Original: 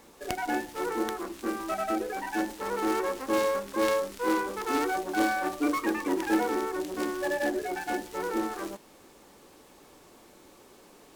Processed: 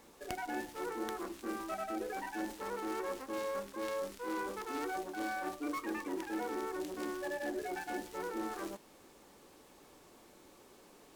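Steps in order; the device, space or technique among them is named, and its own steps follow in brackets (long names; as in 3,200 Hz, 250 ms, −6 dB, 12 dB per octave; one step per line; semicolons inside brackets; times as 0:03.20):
compression on the reversed sound (reversed playback; downward compressor, threshold −30 dBFS, peak gain reduction 9.5 dB; reversed playback)
level −5 dB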